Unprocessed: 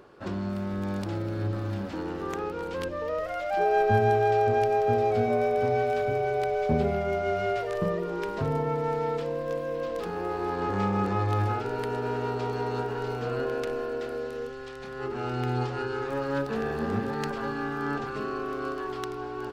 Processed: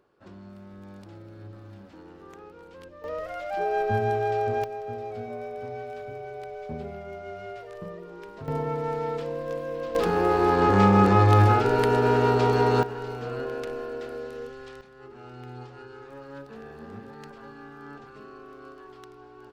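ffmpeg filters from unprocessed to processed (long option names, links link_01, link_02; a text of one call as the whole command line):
ffmpeg -i in.wav -af "asetnsamples=nb_out_samples=441:pad=0,asendcmd='3.04 volume volume -3dB;4.64 volume volume -11dB;8.48 volume volume -1dB;9.95 volume volume 9dB;12.83 volume volume -2.5dB;14.81 volume volume -13dB',volume=-14dB" out.wav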